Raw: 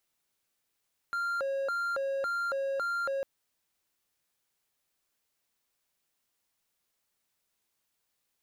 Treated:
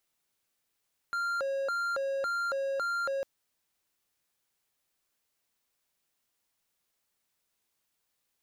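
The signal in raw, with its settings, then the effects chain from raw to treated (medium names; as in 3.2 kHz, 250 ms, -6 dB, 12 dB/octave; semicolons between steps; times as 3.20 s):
siren hi-lo 546–1390 Hz 1.8 per s triangle -27 dBFS 2.10 s
dynamic bell 5.8 kHz, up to +6 dB, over -58 dBFS, Q 1.2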